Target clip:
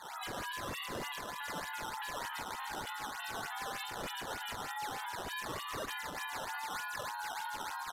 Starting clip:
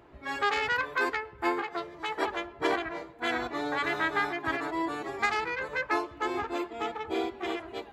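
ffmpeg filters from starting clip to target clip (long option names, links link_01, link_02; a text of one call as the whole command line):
ffmpeg -i in.wav -filter_complex "[0:a]highpass=frequency=300:width_type=q:width=0.5412,highpass=frequency=300:width_type=q:width=1.307,lowpass=frequency=2700:width_type=q:width=0.5176,lowpass=frequency=2700:width_type=q:width=0.7071,lowpass=frequency=2700:width_type=q:width=1.932,afreqshift=190,aecho=1:1:122|244|366:0.224|0.0672|0.0201,acompressor=threshold=-41dB:ratio=8,aemphasis=mode=reproduction:type=bsi,asplit=2[link_01][link_02];[link_02]adelay=42,volume=-2.5dB[link_03];[link_01][link_03]amix=inputs=2:normalize=0,afftdn=noise_reduction=20:noise_floor=-52,bandreject=frequency=1400:width=5.3,flanger=delay=1.2:depth=7.7:regen=88:speed=0.38:shape=triangular,asetrate=72056,aresample=44100,atempo=0.612027,acrusher=samples=11:mix=1:aa=0.000001:lfo=1:lforange=17.6:lforate=3.3,alimiter=level_in=24dB:limit=-24dB:level=0:latency=1:release=117,volume=-24dB,volume=15dB" -ar 32000 -c:a aac -b:a 96k out.aac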